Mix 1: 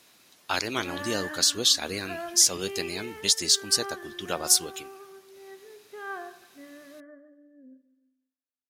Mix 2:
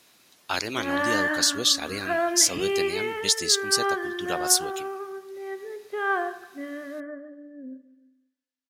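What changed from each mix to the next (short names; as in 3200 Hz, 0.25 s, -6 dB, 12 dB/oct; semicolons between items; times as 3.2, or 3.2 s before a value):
background +11.5 dB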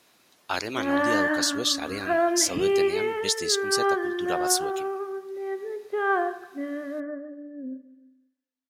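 speech: add low shelf 430 Hz -6.5 dB; master: add tilt shelf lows +4.5 dB, about 1400 Hz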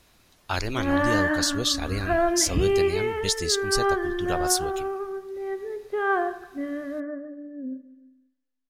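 master: remove HPF 230 Hz 12 dB/oct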